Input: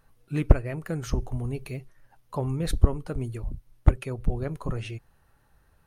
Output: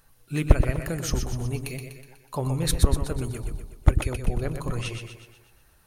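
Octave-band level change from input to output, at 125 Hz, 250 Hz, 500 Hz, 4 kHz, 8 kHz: +1.5, +1.0, +1.5, +9.0, +11.5 dB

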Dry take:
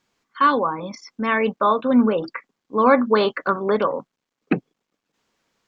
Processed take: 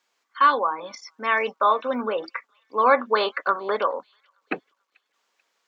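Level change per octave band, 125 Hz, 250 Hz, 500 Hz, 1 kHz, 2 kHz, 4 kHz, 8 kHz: under -15 dB, -14.0 dB, -4.5 dB, -0.5 dB, 0.0 dB, 0.0 dB, n/a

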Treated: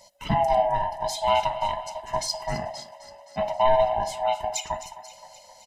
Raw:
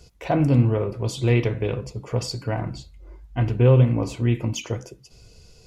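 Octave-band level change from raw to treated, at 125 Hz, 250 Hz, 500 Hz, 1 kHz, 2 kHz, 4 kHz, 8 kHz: -18.5, -14.5, +0.5, +11.5, -1.5, +3.5, +3.5 dB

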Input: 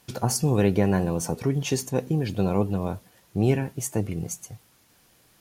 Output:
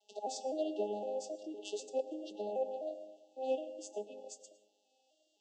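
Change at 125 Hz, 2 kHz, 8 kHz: under -40 dB, -23.0 dB, -18.5 dB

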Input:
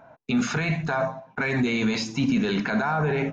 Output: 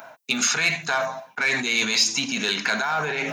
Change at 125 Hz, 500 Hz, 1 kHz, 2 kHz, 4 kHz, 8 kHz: -11.5 dB, -3.0 dB, +1.5 dB, +6.0 dB, +11.5 dB, n/a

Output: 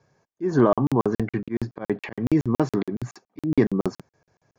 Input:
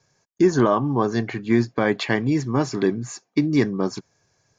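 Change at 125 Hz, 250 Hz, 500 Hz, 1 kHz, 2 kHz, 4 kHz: -1.5, -2.5, -2.5, -3.5, -9.0, -12.0 dB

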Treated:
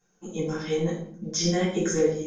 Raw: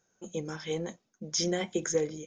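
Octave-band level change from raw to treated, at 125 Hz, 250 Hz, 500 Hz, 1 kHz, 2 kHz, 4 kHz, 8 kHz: +9.5, +8.0, +6.5, +6.0, +4.5, +3.0, +3.0 dB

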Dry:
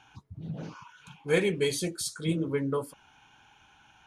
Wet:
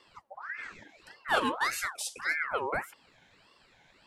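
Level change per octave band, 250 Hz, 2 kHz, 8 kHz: -10.5, +6.5, -3.0 dB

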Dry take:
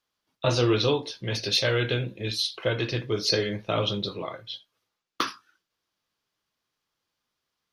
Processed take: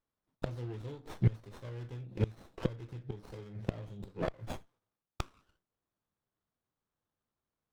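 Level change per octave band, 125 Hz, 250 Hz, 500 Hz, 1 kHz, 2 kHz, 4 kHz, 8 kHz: -5.5, -10.0, -15.5, -14.5, -19.5, -28.0, -22.5 dB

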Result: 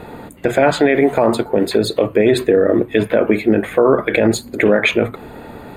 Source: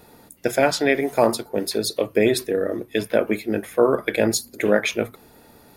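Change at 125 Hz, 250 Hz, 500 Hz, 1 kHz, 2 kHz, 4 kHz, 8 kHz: +8.5, +8.0, +6.5, +5.5, +6.0, +2.5, -2.5 dB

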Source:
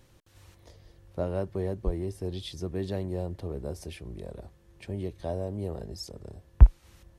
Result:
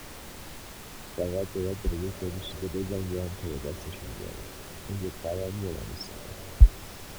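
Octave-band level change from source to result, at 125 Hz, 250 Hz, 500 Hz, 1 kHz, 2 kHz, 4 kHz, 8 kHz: -0.5 dB, +0.5 dB, +0.5 dB, +1.0 dB, +7.5 dB, +4.0 dB, n/a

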